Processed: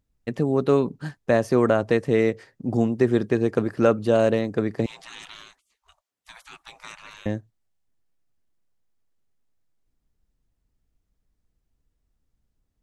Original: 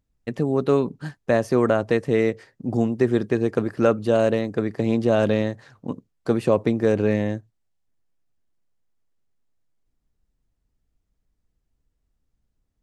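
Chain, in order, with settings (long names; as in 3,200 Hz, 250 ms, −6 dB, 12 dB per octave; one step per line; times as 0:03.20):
0:04.86–0:07.26: gate on every frequency bin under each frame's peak −30 dB weak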